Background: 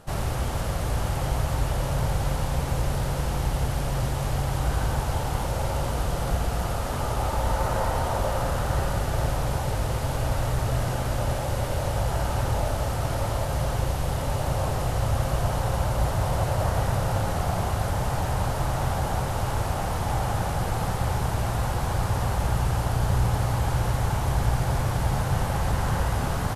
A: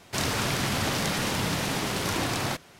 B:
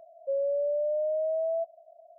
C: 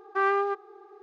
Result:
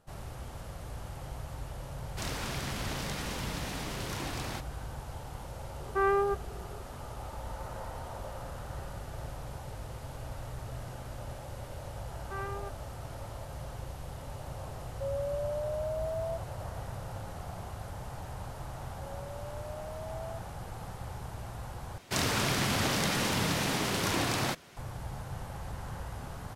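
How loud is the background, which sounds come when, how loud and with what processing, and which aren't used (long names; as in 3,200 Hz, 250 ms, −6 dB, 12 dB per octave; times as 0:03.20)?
background −15.5 dB
0:02.04: mix in A −10 dB
0:05.80: mix in C −3.5 dB + spectral tilt −2.5 dB per octave
0:12.15: mix in C −15 dB
0:14.73: mix in B −6.5 dB
0:18.74: mix in B −9.5 dB + high-pass filter 710 Hz 24 dB per octave
0:21.98: overwrite with A −2 dB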